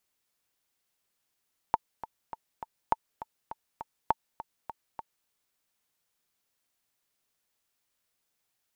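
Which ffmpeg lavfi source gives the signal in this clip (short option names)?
-f lavfi -i "aevalsrc='pow(10,(-9.5-15*gte(mod(t,4*60/203),60/203))/20)*sin(2*PI*900*mod(t,60/203))*exp(-6.91*mod(t,60/203)/0.03)':d=3.54:s=44100"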